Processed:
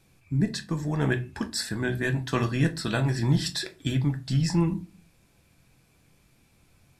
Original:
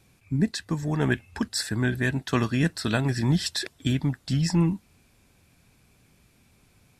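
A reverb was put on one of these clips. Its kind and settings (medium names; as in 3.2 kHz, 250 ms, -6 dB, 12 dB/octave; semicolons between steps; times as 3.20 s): simulated room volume 130 m³, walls furnished, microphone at 0.71 m; trim -2.5 dB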